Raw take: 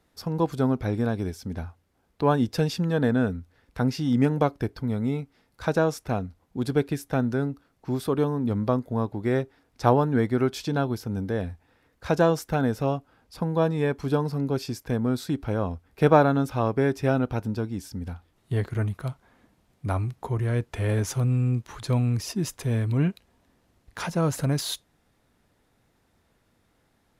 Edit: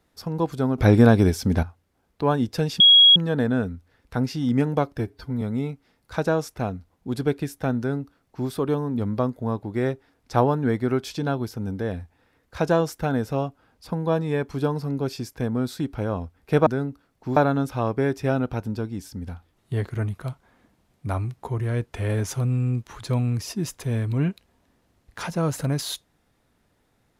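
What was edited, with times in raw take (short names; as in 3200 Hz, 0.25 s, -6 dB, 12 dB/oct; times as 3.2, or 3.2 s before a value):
0.78–1.63 gain +11.5 dB
2.8 add tone 3310 Hz -9 dBFS 0.36 s
4.62–4.91 stretch 1.5×
7.28–7.98 copy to 16.16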